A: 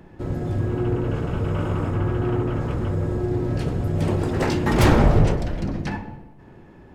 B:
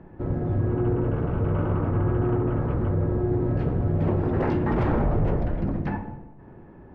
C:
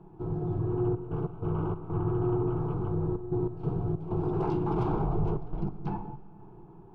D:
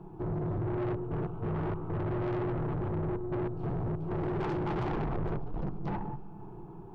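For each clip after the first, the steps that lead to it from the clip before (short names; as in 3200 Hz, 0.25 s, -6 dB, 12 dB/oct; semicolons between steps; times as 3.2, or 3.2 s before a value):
limiter -14.5 dBFS, peak gain reduction 10 dB; LPF 1500 Hz 12 dB/oct
step gate "xxxxxx.x.xx.xx" 95 bpm -12 dB; fixed phaser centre 370 Hz, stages 8; on a send at -17 dB: reverb RT60 3.8 s, pre-delay 65 ms; on the sum: gain -2.5 dB
soft clip -34 dBFS, distortion -7 dB; gain +4.5 dB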